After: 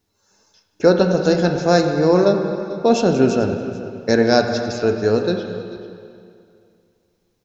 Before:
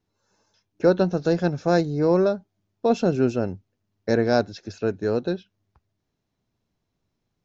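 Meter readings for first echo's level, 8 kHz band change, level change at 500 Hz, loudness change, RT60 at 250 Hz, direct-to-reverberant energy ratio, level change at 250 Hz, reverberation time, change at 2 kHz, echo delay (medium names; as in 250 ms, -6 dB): -17.0 dB, no reading, +6.0 dB, +5.5 dB, 2.4 s, 4.0 dB, +5.5 dB, 2.4 s, +7.5 dB, 439 ms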